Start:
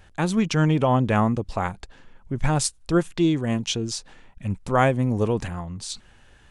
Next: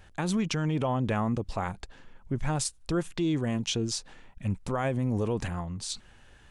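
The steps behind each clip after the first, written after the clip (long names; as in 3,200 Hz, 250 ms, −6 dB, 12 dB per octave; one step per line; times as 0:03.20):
brickwall limiter −17.5 dBFS, peak gain reduction 11 dB
level −2 dB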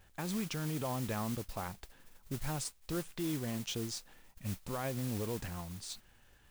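noise that follows the level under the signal 11 dB
level −9 dB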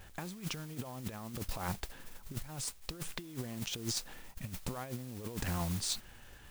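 compressor whose output falls as the input rises −42 dBFS, ratio −0.5
level +4 dB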